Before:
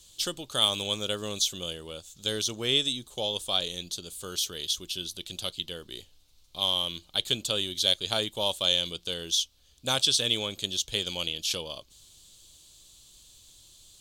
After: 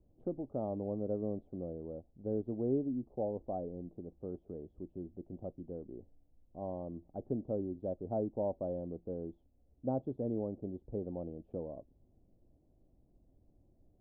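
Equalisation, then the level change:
Chebyshev low-pass filter 730 Hz, order 4
high-frequency loss of the air 73 metres
parametric band 260 Hz +7 dB 0.64 octaves
−2.0 dB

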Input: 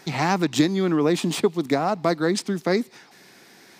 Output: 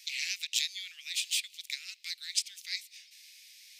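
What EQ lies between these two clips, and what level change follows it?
Butterworth high-pass 2,300 Hz 48 dB per octave
0.0 dB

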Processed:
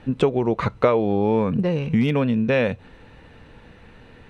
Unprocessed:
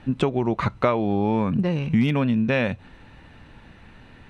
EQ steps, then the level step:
parametric band 470 Hz +9.5 dB 0.35 octaves
0.0 dB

